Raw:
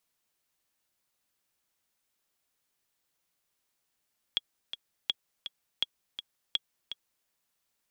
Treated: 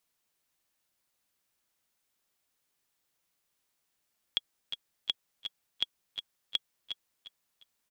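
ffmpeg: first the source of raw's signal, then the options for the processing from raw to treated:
-f lavfi -i "aevalsrc='pow(10,(-14-10*gte(mod(t,2*60/165),60/165))/20)*sin(2*PI*3330*mod(t,60/165))*exp(-6.91*mod(t,60/165)/0.03)':d=2.9:s=44100"
-af "aecho=1:1:354|708|1062:0.266|0.0745|0.0209"

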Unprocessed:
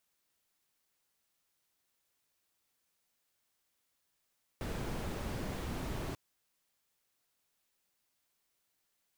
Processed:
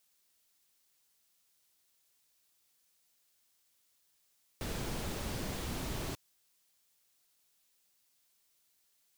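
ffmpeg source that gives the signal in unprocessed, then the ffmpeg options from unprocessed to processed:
-f lavfi -i "anoisesrc=c=brown:a=0.0589:d=1.54:r=44100:seed=1"
-filter_complex "[0:a]acrossover=split=3000[s0][s1];[s1]acontrast=84[s2];[s0][s2]amix=inputs=2:normalize=0"

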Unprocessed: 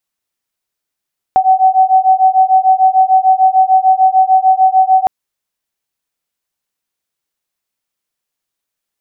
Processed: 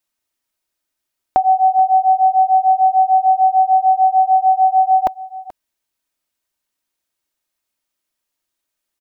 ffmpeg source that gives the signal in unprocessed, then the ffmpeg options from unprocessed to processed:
-f lavfi -i "aevalsrc='0.335*(sin(2*PI*753*t)+sin(2*PI*759.7*t))':d=3.71:s=44100"
-af "aecho=1:1:3.2:0.41,aecho=1:1:432:0.133"

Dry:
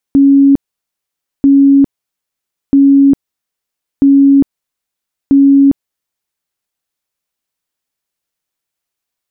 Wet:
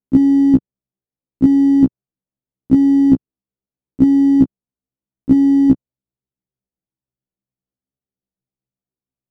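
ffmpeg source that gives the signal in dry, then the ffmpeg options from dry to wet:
-f lavfi -i "aevalsrc='0.708*sin(2*PI*277*mod(t,1.29))*lt(mod(t,1.29),112/277)':d=6.45:s=44100"
-af "equalizer=f=150:w=0.65:g=9,adynamicsmooth=sensitivity=5:basefreq=540,afftfilt=real='re*1.73*eq(mod(b,3),0)':imag='im*1.73*eq(mod(b,3),0)':win_size=2048:overlap=0.75"

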